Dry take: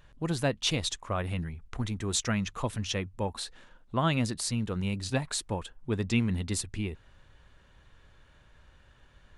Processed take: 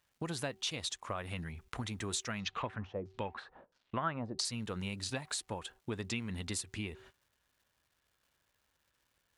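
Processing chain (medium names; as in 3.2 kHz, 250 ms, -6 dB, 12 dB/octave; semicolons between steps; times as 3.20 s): high-pass 60 Hz 12 dB/octave; de-hum 381.1 Hz, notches 2; gate -53 dBFS, range -23 dB; bass shelf 470 Hz -8 dB; compression 4:1, threshold -43 dBFS, peak gain reduction 15.5 dB; crackle 570 per s -70 dBFS; 2.39–4.45 s: LFO low-pass saw down 1.5 Hz 460–5900 Hz; trim +6 dB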